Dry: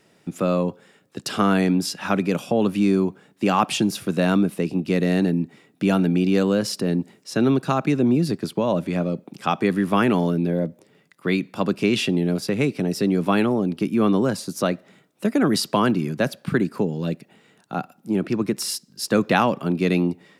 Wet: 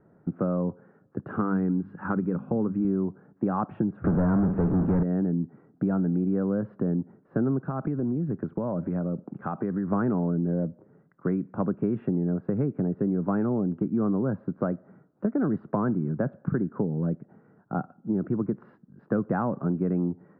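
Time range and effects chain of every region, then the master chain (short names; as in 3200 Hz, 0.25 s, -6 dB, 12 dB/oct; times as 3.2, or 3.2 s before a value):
1.31–2.85 bell 650 Hz -10 dB 0.4 oct + notches 50/100/150/200/250 Hz
4.04–5.03 flutter echo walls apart 8.8 m, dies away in 0.21 s + power-law curve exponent 0.35 + air absorption 150 m
7.59–9.92 high shelf 3600 Hz +11 dB + compressor 2.5:1, threshold -26 dBFS
whole clip: elliptic low-pass 1500 Hz, stop band 80 dB; low shelf 240 Hz +11.5 dB; compressor 3:1, threshold -21 dBFS; gain -3.5 dB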